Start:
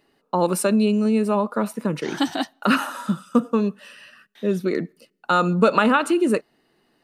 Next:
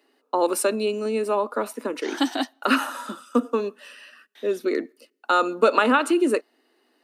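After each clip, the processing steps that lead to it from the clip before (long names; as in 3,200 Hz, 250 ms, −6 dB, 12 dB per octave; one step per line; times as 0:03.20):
Chebyshev high-pass filter 250 Hz, order 5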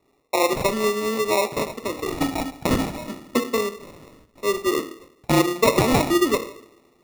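coupled-rooms reverb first 0.63 s, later 2.4 s, from −26 dB, DRR 6.5 dB
decimation without filtering 28×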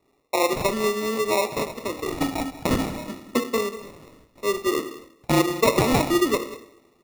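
single-tap delay 191 ms −16 dB
level −1.5 dB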